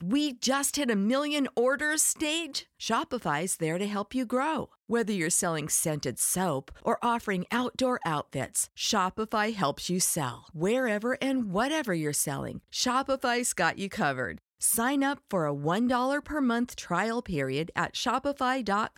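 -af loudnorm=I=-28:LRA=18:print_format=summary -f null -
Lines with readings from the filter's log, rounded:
Input Integrated:    -28.5 LUFS
Input True Peak:     -11.8 dBTP
Input LRA:             1.3 LU
Input Threshold:     -38.5 LUFS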